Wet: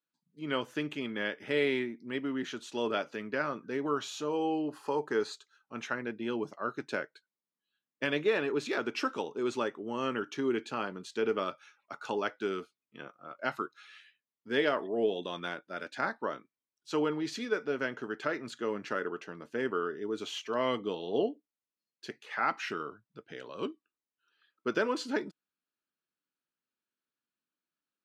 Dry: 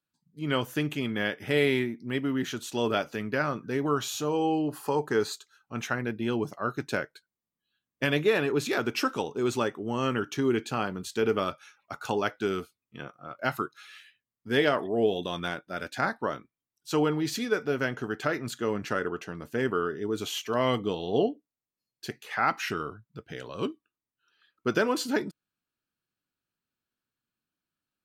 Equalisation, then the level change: high-pass 230 Hz 12 dB/octave; distance through air 73 m; band-stop 740 Hz, Q 12; -3.5 dB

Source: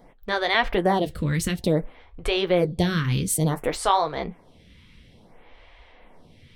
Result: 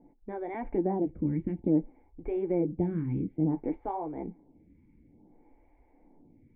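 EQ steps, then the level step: cascade formant filter u; high-order bell 2.1 kHz +12 dB 1.2 oct; band-stop 930 Hz, Q 23; +4.0 dB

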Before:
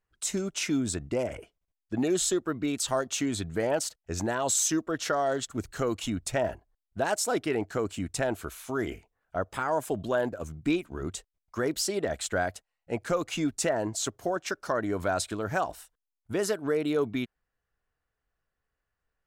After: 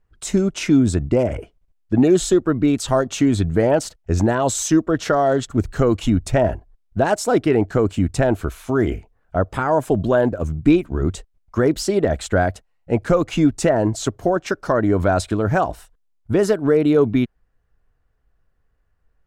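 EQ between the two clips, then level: tilt EQ -2.5 dB/octave; +8.5 dB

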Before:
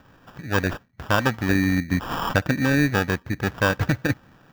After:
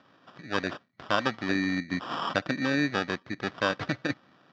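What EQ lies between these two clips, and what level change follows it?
cabinet simulation 150–4900 Hz, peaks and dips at 470 Hz -5 dB, 880 Hz -7 dB, 1.6 kHz -7 dB, 2.6 kHz -5 dB; bass shelf 260 Hz -12 dB; 0.0 dB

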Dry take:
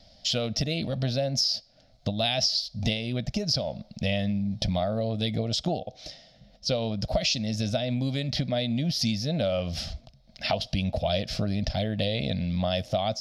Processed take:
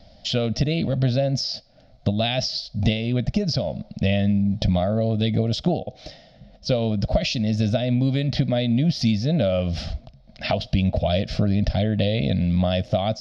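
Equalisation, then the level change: dynamic bell 880 Hz, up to -5 dB, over -42 dBFS, Q 1.4; tape spacing loss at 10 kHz 20 dB; +8.0 dB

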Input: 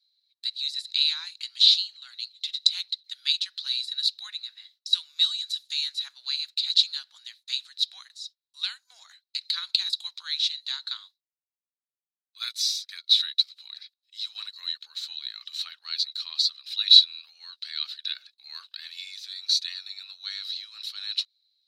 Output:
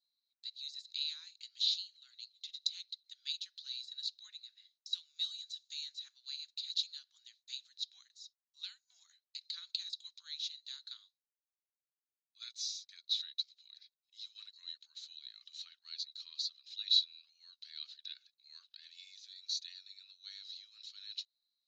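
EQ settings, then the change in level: band-pass filter 6.7 kHz, Q 7.3; distance through air 250 m; +11.5 dB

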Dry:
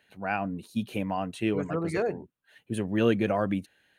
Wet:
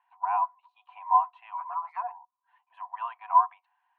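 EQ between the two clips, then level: rippled Chebyshev high-pass 710 Hz, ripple 9 dB; resonant low-pass 1 kHz, resonance Q 10; 0.0 dB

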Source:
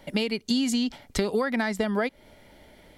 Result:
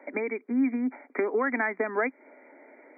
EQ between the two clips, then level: Chebyshev high-pass 260 Hz, order 5; dynamic bell 550 Hz, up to -7 dB, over -43 dBFS, Q 2.4; brick-wall FIR low-pass 2.4 kHz; +3.0 dB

